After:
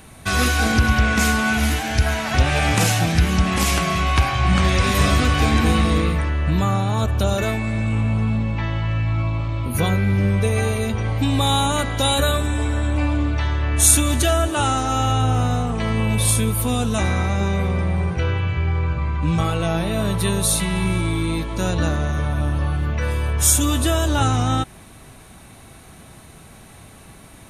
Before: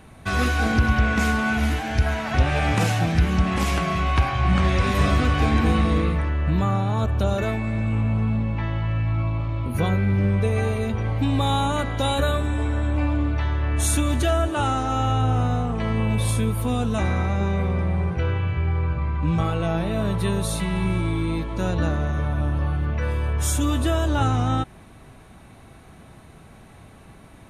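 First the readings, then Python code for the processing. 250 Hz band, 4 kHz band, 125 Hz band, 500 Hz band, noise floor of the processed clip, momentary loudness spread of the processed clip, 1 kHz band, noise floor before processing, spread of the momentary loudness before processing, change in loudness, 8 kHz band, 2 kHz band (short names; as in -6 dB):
+2.0 dB, +7.5 dB, +2.0 dB, +2.0 dB, -44 dBFS, 6 LU, +3.0 dB, -47 dBFS, 5 LU, +3.0 dB, +12.0 dB, +4.0 dB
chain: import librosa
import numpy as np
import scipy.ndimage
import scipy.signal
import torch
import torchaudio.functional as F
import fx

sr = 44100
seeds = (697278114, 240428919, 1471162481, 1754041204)

y = fx.high_shelf(x, sr, hz=3800.0, db=12.0)
y = y * librosa.db_to_amplitude(2.0)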